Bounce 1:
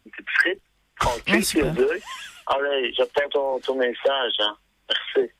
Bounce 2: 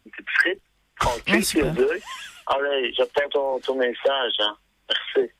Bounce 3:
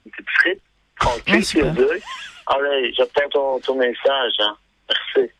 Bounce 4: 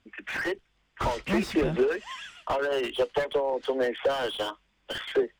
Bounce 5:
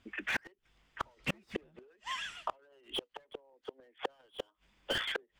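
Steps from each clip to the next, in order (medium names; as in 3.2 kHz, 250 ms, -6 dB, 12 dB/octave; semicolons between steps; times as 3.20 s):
no audible change
low-pass 6.2 kHz 12 dB/octave; trim +4 dB
slew-rate limiter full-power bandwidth 140 Hz; trim -7.5 dB
inverted gate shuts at -21 dBFS, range -37 dB; trim +1 dB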